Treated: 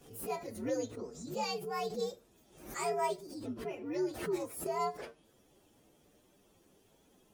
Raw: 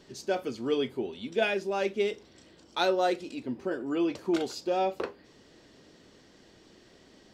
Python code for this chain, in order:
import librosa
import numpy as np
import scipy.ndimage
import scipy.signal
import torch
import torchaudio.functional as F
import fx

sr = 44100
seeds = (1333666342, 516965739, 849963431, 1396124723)

y = fx.partial_stretch(x, sr, pct=127)
y = fx.pre_swell(y, sr, db_per_s=91.0)
y = y * librosa.db_to_amplitude(-5.5)